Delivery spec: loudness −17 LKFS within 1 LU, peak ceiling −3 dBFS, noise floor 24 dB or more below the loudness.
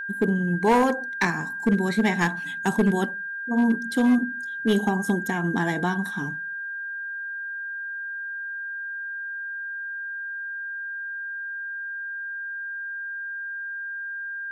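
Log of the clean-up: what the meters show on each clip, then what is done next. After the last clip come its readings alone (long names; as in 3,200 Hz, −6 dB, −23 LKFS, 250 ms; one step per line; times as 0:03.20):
share of clipped samples 0.6%; peaks flattened at −14.0 dBFS; interfering tone 1,600 Hz; level of the tone −30 dBFS; integrated loudness −26.5 LKFS; sample peak −14.0 dBFS; target loudness −17.0 LKFS
→ clipped peaks rebuilt −14 dBFS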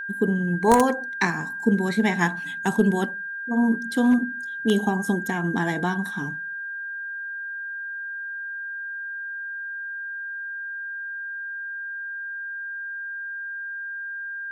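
share of clipped samples 0.0%; interfering tone 1,600 Hz; level of the tone −30 dBFS
→ notch filter 1,600 Hz, Q 30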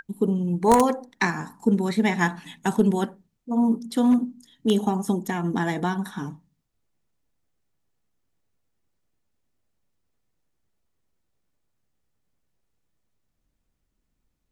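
interfering tone none found; integrated loudness −24.0 LKFS; sample peak −5.0 dBFS; target loudness −17.0 LKFS
→ level +7 dB
brickwall limiter −3 dBFS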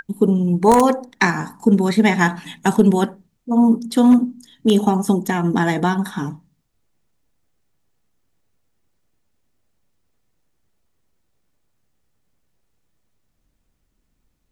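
integrated loudness −17.5 LKFS; sample peak −3.0 dBFS; background noise floor −69 dBFS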